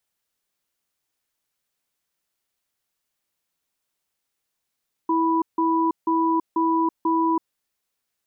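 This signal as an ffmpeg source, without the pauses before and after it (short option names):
-f lavfi -i "aevalsrc='0.0944*(sin(2*PI*327*t)+sin(2*PI*986*t))*clip(min(mod(t,0.49),0.33-mod(t,0.49))/0.005,0,1)':d=2.4:s=44100"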